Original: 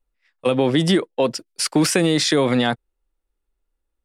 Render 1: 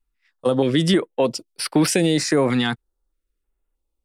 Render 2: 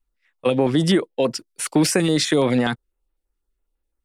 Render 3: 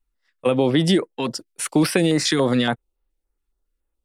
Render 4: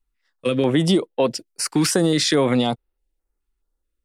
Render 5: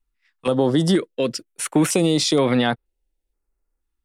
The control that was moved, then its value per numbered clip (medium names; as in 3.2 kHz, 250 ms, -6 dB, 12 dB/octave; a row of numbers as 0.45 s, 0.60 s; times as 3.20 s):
step-sequenced notch, rate: 3.2 Hz, 12 Hz, 7.1 Hz, 4.7 Hz, 2.1 Hz